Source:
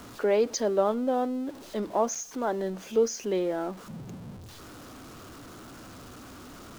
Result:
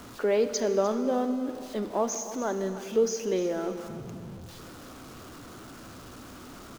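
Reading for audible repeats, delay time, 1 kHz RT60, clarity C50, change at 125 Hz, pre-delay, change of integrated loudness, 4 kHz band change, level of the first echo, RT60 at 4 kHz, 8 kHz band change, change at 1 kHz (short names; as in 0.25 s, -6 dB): 1, 0.301 s, 2.8 s, 9.0 dB, +0.5 dB, 23 ms, -0.5 dB, +0.5 dB, -14.5 dB, 2.4 s, +0.5 dB, -2.5 dB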